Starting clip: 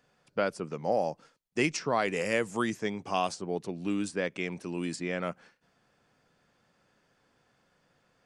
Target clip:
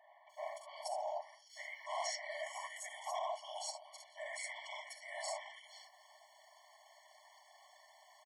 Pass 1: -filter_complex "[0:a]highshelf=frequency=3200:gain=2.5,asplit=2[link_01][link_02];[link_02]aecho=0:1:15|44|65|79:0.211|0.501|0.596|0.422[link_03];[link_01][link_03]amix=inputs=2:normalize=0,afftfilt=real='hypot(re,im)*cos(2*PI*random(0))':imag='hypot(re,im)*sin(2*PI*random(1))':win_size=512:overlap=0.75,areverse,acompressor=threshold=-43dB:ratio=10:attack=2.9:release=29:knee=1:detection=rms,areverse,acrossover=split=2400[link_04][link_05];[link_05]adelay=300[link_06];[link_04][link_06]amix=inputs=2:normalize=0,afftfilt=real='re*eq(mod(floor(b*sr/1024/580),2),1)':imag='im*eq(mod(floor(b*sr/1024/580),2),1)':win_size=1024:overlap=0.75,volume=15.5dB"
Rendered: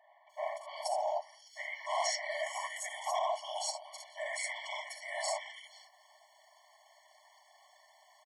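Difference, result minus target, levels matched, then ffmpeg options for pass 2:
downward compressor: peak gain reduction −6.5 dB
-filter_complex "[0:a]highshelf=frequency=3200:gain=2.5,asplit=2[link_01][link_02];[link_02]aecho=0:1:15|44|65|79:0.211|0.501|0.596|0.422[link_03];[link_01][link_03]amix=inputs=2:normalize=0,afftfilt=real='hypot(re,im)*cos(2*PI*random(0))':imag='hypot(re,im)*sin(2*PI*random(1))':win_size=512:overlap=0.75,areverse,acompressor=threshold=-50.5dB:ratio=10:attack=2.9:release=29:knee=1:detection=rms,areverse,acrossover=split=2400[link_04][link_05];[link_05]adelay=300[link_06];[link_04][link_06]amix=inputs=2:normalize=0,afftfilt=real='re*eq(mod(floor(b*sr/1024/580),2),1)':imag='im*eq(mod(floor(b*sr/1024/580),2),1)':win_size=1024:overlap=0.75,volume=15.5dB"

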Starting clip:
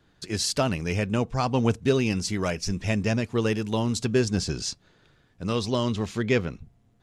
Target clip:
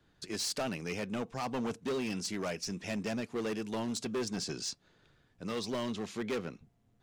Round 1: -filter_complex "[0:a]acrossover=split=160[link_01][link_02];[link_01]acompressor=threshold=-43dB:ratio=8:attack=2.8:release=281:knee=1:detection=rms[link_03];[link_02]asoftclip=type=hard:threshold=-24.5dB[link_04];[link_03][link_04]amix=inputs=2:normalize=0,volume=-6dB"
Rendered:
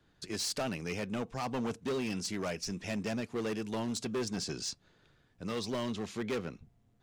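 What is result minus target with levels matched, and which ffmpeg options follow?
downward compressor: peak gain reduction −7.5 dB
-filter_complex "[0:a]acrossover=split=160[link_01][link_02];[link_01]acompressor=threshold=-51.5dB:ratio=8:attack=2.8:release=281:knee=1:detection=rms[link_03];[link_02]asoftclip=type=hard:threshold=-24.5dB[link_04];[link_03][link_04]amix=inputs=2:normalize=0,volume=-6dB"

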